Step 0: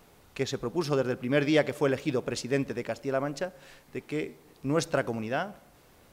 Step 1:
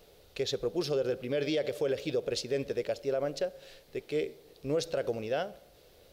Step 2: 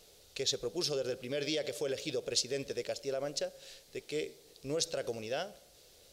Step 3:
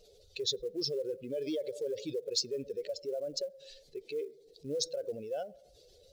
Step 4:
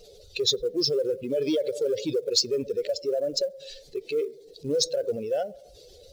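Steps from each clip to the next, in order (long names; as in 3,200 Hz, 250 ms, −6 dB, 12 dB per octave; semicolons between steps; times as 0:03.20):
octave-band graphic EQ 125/250/500/1,000/2,000/4,000/8,000 Hz −4/−9/+9/−11/−4/+6/−5 dB; brickwall limiter −22 dBFS, peak gain reduction 11 dB
parametric band 7,300 Hz +14 dB 2 octaves; level −5.5 dB
expanding power law on the bin magnitudes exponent 2.1; floating-point word with a short mantissa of 4 bits
spectral magnitudes quantised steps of 15 dB; in parallel at −12 dB: soft clipping −33.5 dBFS, distortion −12 dB; on the sum: level +8.5 dB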